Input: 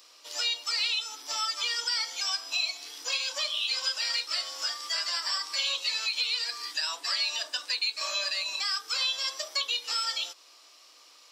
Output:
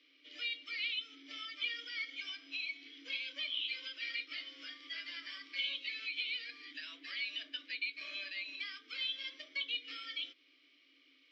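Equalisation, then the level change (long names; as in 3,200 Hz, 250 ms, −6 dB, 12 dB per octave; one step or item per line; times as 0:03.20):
formant filter i
high-frequency loss of the air 240 metres
+9.0 dB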